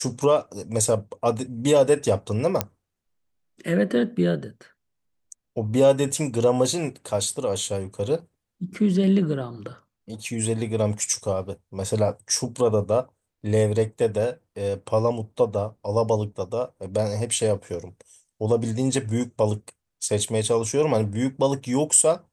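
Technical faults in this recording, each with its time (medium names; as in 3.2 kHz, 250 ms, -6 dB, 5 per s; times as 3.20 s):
2.61 s: pop -5 dBFS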